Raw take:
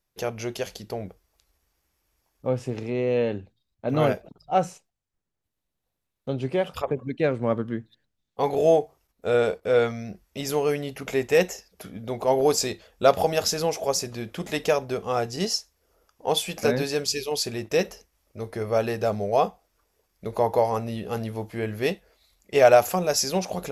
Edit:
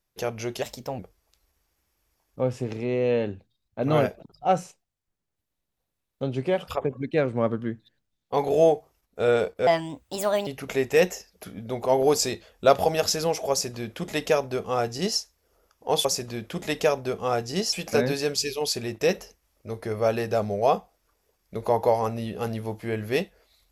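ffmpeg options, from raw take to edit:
-filter_complex "[0:a]asplit=7[a][b][c][d][e][f][g];[a]atrim=end=0.624[h];[b]atrim=start=0.62:end=1.05,asetpts=PTS-STARTPTS,asetrate=51597,aresample=44100[i];[c]atrim=start=1.046:end=9.734[j];[d]atrim=start=9.73:end=10.85,asetpts=PTS-STARTPTS,asetrate=61740,aresample=44100[k];[e]atrim=start=10.846:end=16.432[l];[f]atrim=start=13.888:end=15.572[m];[g]atrim=start=16.428[n];[h][i]acrossfade=d=0.004:c1=hsin:c2=hsin[o];[o][j]acrossfade=d=0.004:c1=hsin:c2=hsin[p];[p][k]acrossfade=d=0.004:c1=hsin:c2=hsin[q];[q][l]acrossfade=d=0.004:c1=hsin:c2=hsin[r];[r][m]acrossfade=d=0.004:c1=hsin:c2=hsin[s];[s][n]acrossfade=d=0.004:c1=hsin:c2=hsin"

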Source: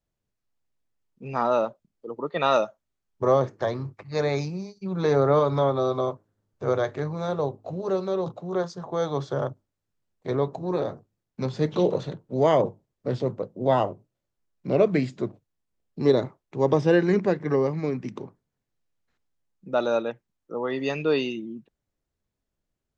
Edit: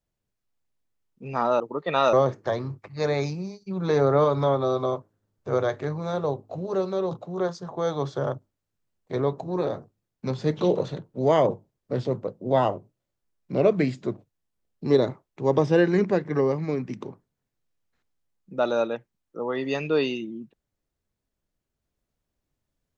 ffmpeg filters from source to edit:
-filter_complex "[0:a]asplit=3[a][b][c];[a]atrim=end=1.602[d];[b]atrim=start=2.078:end=2.612[e];[c]atrim=start=3.278[f];[d][e]acrossfade=d=0.004:c1=hsin:c2=hsin[g];[g][f]acrossfade=d=0.004:c1=hsin:c2=hsin"

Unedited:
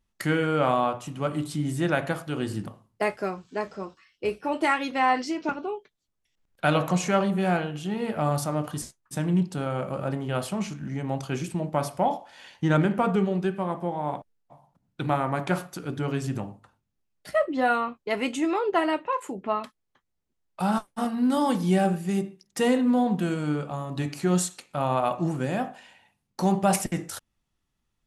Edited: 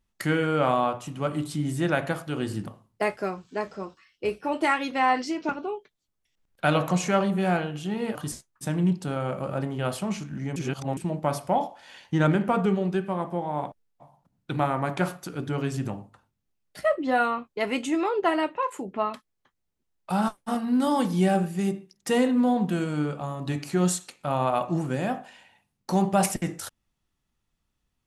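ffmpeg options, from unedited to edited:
-filter_complex "[0:a]asplit=4[a][b][c][d];[a]atrim=end=8.152[e];[b]atrim=start=8.648:end=11.062[f];[c]atrim=start=11.058:end=11.472,asetpts=PTS-STARTPTS,areverse[g];[d]atrim=start=11.468[h];[e][f]acrossfade=d=0.004:c1=hsin:c2=hsin[i];[i][g]acrossfade=d=0.004:c1=hsin:c2=hsin[j];[j][h]acrossfade=d=0.004:c1=hsin:c2=hsin"

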